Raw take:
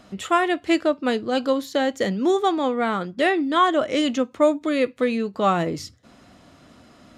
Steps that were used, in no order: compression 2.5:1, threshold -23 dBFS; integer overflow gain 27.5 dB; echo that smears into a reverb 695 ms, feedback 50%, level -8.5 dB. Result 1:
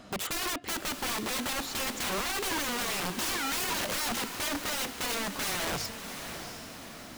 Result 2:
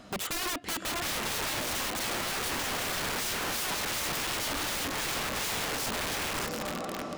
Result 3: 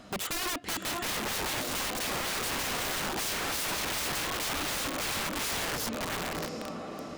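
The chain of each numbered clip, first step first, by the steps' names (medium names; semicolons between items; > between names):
compression > integer overflow > echo that smears into a reverb; echo that smears into a reverb > compression > integer overflow; compression > echo that smears into a reverb > integer overflow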